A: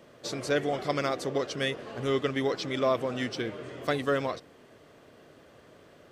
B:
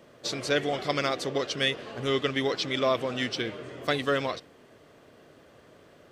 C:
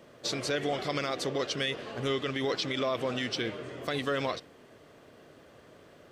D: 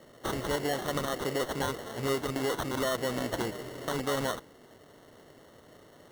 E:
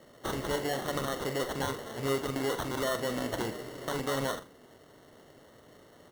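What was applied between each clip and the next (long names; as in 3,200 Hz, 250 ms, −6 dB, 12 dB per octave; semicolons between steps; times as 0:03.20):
dynamic equaliser 3,400 Hz, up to +7 dB, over −48 dBFS, Q 0.76
brickwall limiter −20.5 dBFS, peak gain reduction 8 dB
decimation without filtering 18×
ambience of single reflections 44 ms −10 dB, 79 ms −17 dB; level −1.5 dB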